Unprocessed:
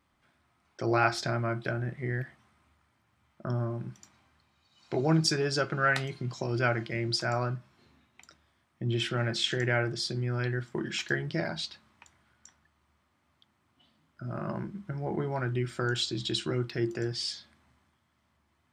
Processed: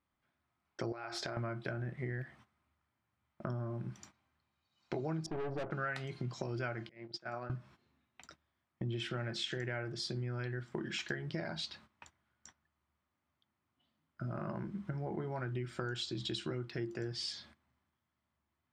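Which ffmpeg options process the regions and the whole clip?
ffmpeg -i in.wav -filter_complex "[0:a]asettb=1/sr,asplit=3[link_01][link_02][link_03];[link_01]atrim=end=0.924[link_04];[link_02]atrim=start=0.92:end=1.37,asetpts=PTS-STARTPTS,afade=type=in:duration=0.004:curve=qsin,afade=type=out:start_time=0.446:duration=0.004:curve=qsin,lowshelf=frequency=290:width_type=q:width=1.5:gain=-7,acompressor=threshold=-33dB:ratio=12:attack=3.2:release=140:knee=1:detection=peak[link_05];[link_03]atrim=start=1.366[link_06];[link_04][link_05]acrossfade=duration=0.004:curve1=hsin:curve2=qsin[link_07];[link_07][link_06]acrossfade=duration=0.004:curve1=qsin:curve2=hsin,asettb=1/sr,asplit=3[link_08][link_09][link_10];[link_08]atrim=end=5.264[link_11];[link_09]atrim=start=5.26:end=5.71,asetpts=PTS-STARTPTS,afade=type=in:duration=0.004:curve=qsin,afade=type=out:start_time=0.446:duration=0.004:curve=qsin,acontrast=26,lowpass=frequency=740:width_type=q:width=3.6,aeval=exprs='(tanh(25.1*val(0)+0.55)-tanh(0.55))/25.1':channel_layout=same[link_12];[link_10]atrim=start=5.706[link_13];[link_11][link_12]acrossfade=duration=0.004:curve1=hsin:curve2=qsin[link_14];[link_14][link_13]acrossfade=duration=0.004:curve1=qsin:curve2=hsin,asettb=1/sr,asplit=3[link_15][link_16][link_17];[link_15]atrim=end=6.894[link_18];[link_16]atrim=start=6.89:end=7.5,asetpts=PTS-STARTPTS,afade=type=in:duration=0.004:curve=qsin,afade=type=out:start_time=0.606:duration=0.004:curve=qsin,agate=range=-27dB:threshold=-29dB:ratio=16:release=100:detection=peak,highpass=170,lowpass=4300,acompressor=threshold=-43dB:ratio=2:attack=3.2:release=140:knee=1:detection=peak[link_19];[link_17]atrim=start=7.496[link_20];[link_18][link_19]acrossfade=duration=0.004:curve1=hsin:curve2=qsin[link_21];[link_21][link_20]acrossfade=duration=0.004:curve1=qsin:curve2=hsin,agate=range=-15dB:threshold=-56dB:ratio=16:detection=peak,highshelf=frequency=6400:gain=-7.5,acompressor=threshold=-39dB:ratio=5,volume=2.5dB" out.wav

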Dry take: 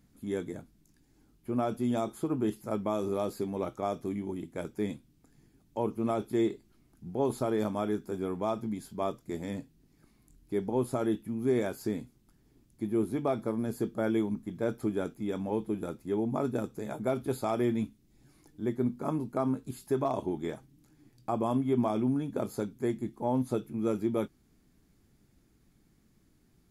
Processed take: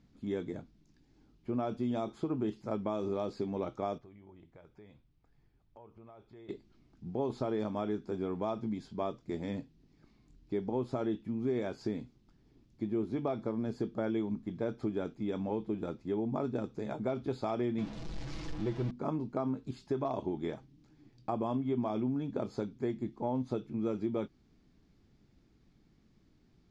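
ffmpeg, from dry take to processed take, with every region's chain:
ffmpeg -i in.wav -filter_complex "[0:a]asettb=1/sr,asplit=3[link_01][link_02][link_03];[link_01]atrim=end=3.984[link_04];[link_02]atrim=start=3.98:end=6.49,asetpts=PTS-STARTPTS,afade=type=in:duration=0.004:curve=qsin,afade=type=out:start_time=2.506:duration=0.004:curve=qsin,equalizer=frequency=250:width_type=o:width=1.8:gain=-15,acompressor=threshold=-52dB:ratio=4:attack=3.2:release=140:knee=1:detection=peak,lowpass=frequency=1400:poles=1[link_05];[link_03]atrim=start=6.486[link_06];[link_04][link_05]acrossfade=duration=0.004:curve1=hsin:curve2=qsin[link_07];[link_07][link_06]acrossfade=duration=0.004:curve1=qsin:curve2=hsin,asettb=1/sr,asplit=3[link_08][link_09][link_10];[link_08]atrim=end=17.784[link_11];[link_09]atrim=start=17.78:end=18.91,asetpts=PTS-STARTPTS,afade=type=in:duration=0.004:curve=qsin,afade=type=out:start_time=1.126:duration=0.004:curve=qsin,aeval=exprs='val(0)+0.5*0.0126*sgn(val(0))':channel_layout=same,asubboost=boost=10.5:cutoff=100,aecho=1:1:6.1:0.56,atrim=end_sample=49833[link_12];[link_10]atrim=start=18.906[link_13];[link_11][link_12]acrossfade=duration=0.004:curve1=hsin:curve2=qsin[link_14];[link_14][link_13]acrossfade=duration=0.004:curve1=qsin:curve2=hsin,lowpass=frequency=5500:width=0.5412,lowpass=frequency=5500:width=1.3066,equalizer=frequency=1600:width_type=o:width=0.77:gain=-2.5,acompressor=threshold=-31dB:ratio=2.5" out.wav

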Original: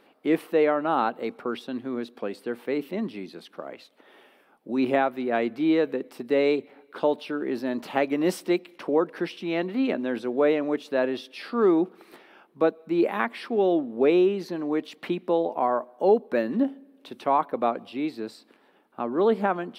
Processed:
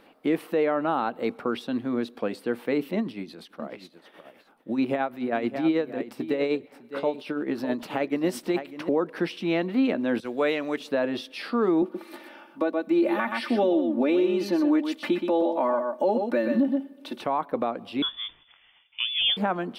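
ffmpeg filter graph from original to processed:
ffmpeg -i in.wav -filter_complex "[0:a]asettb=1/sr,asplit=3[link_01][link_02][link_03];[link_01]atrim=end=2.994[link_04];[link_02]atrim=start=2.99:end=8.89,asetpts=PTS-STARTPTS,afade=type=in:duration=0.004:curve=qsin,afade=type=out:start_time=5.896:duration=0.004:curve=qsin,aecho=1:1:604:0.224,atrim=end_sample=260190,tremolo=f=9.3:d=0.6[link_05];[link_03]atrim=start=8.886[link_06];[link_04][link_05]acrossfade=duration=0.004:curve1=hsin:curve2=qsin[link_07];[link_07][link_06]acrossfade=duration=0.004:curve1=qsin:curve2=hsin,asettb=1/sr,asplit=3[link_08][link_09][link_10];[link_08]atrim=end=10.204[link_11];[link_09]atrim=start=10.2:end=10.8,asetpts=PTS-STARTPTS,afade=type=in:duration=0.004:curve=qsin,afade=type=out:start_time=0.596:duration=0.004:curve=qsin,agate=range=-33dB:threshold=-31dB:ratio=3:release=100:detection=peak,tiltshelf=frequency=1500:gain=-7.5,acompressor=mode=upward:threshold=-44dB:ratio=2.5:attack=3.2:release=140:knee=2.83:detection=peak[link_12];[link_10]atrim=start=10.796[link_13];[link_11][link_12]acrossfade=duration=0.004:curve1=hsin:curve2=qsin[link_14];[link_14][link_13]acrossfade=duration=0.004:curve1=qsin:curve2=hsin,asettb=1/sr,asplit=3[link_15][link_16][link_17];[link_15]atrim=end=11.824[link_18];[link_16]atrim=start=11.82:end=17.21,asetpts=PTS-STARTPTS,afade=type=in:duration=0.004:curve=qsin,afade=type=out:start_time=5.386:duration=0.004:curve=qsin,highpass=170,aecho=1:1:3.4:0.87,atrim=end_sample=237699,aecho=1:1:123:0.398,atrim=end_sample=237699[link_19];[link_17]atrim=start=17.206[link_20];[link_18][link_19]acrossfade=duration=0.004:curve1=hsin:curve2=qsin[link_21];[link_21][link_20]acrossfade=duration=0.004:curve1=qsin:curve2=hsin,asettb=1/sr,asplit=3[link_22][link_23][link_24];[link_22]atrim=end=18.024[link_25];[link_23]atrim=start=18.02:end=19.37,asetpts=PTS-STARTPTS,afade=type=in:duration=0.004:curve=qsin,afade=type=out:start_time=1.346:duration=0.004:curve=qsin,equalizer=frequency=380:width_type=o:width=0.35:gain=-15,lowpass=frequency=3100:width_type=q:width=0.5098,lowpass=frequency=3100:width_type=q:width=0.6013,lowpass=frequency=3100:width_type=q:width=0.9,lowpass=frequency=3100:width_type=q:width=2.563,afreqshift=-3700[link_26];[link_24]atrim=start=19.366[link_27];[link_25][link_26]acrossfade=duration=0.004:curve1=hsin:curve2=qsin[link_28];[link_28][link_27]acrossfade=duration=0.004:curve1=qsin:curve2=hsin,lowshelf=frequency=88:gain=10.5,bandreject=frequency=390:width=12,alimiter=limit=-18dB:level=0:latency=1:release=212,volume=3dB" out.wav

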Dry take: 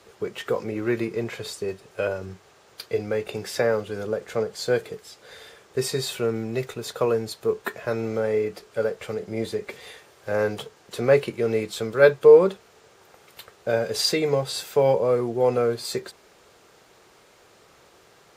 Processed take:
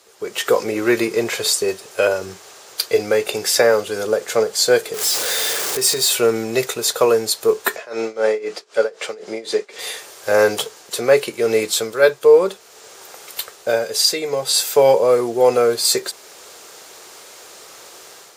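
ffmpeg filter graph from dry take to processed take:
ffmpeg -i in.wav -filter_complex "[0:a]asettb=1/sr,asplit=3[link_01][link_02][link_03];[link_01]atrim=end=4.944[link_04];[link_02]atrim=start=4.94:end=6.11,asetpts=PTS-STARTPTS,afade=type=in:duration=0.004:curve=qsin,afade=type=out:start_time=1.166:duration=0.004:curve=qsin,aeval=exprs='val(0)+0.5*0.0237*sgn(val(0))':channel_layout=same,acompressor=threshold=-34dB:ratio=2:attack=3.2:release=140:knee=1:detection=peak[link_05];[link_03]atrim=start=6.106[link_06];[link_04][link_05]acrossfade=duration=0.004:curve1=hsin:curve2=qsin[link_07];[link_07][link_06]acrossfade=duration=0.004:curve1=qsin:curve2=hsin,asettb=1/sr,asplit=3[link_08][link_09][link_10];[link_08]atrim=end=7.764[link_11];[link_09]atrim=start=7.76:end=9.79,asetpts=PTS-STARTPTS,afade=type=in:duration=0.004:curve=qsin,afade=type=out:start_time=2.026:duration=0.004:curve=qsin,highpass=240,lowpass=6200,tremolo=f=3.9:d=0.9[link_12];[link_10]atrim=start=9.786[link_13];[link_11][link_12]acrossfade=duration=0.004:curve1=hsin:curve2=qsin[link_14];[link_14][link_13]acrossfade=duration=0.004:curve1=qsin:curve2=hsin,bass=frequency=250:gain=-13,treble=frequency=4000:gain=10,dynaudnorm=framelen=120:gausssize=5:maxgain=12.5dB,volume=-1dB" out.wav

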